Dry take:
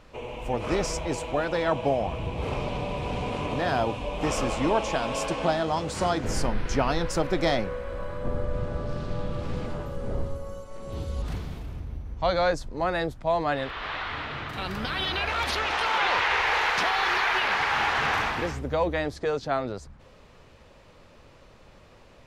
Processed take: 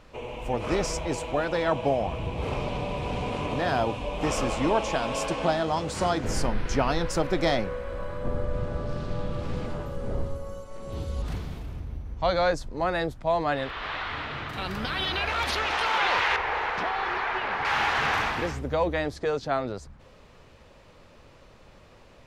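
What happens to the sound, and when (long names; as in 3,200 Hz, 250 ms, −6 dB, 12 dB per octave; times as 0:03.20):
0:16.36–0:17.65: low-pass filter 1,100 Hz 6 dB per octave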